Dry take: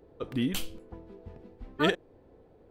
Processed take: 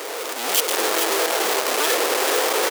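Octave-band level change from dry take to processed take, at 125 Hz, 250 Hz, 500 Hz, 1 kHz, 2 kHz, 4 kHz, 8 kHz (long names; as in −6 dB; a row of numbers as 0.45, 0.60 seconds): below −15 dB, +1.0 dB, +14.0 dB, +17.5 dB, +14.5 dB, +16.0 dB, +25.5 dB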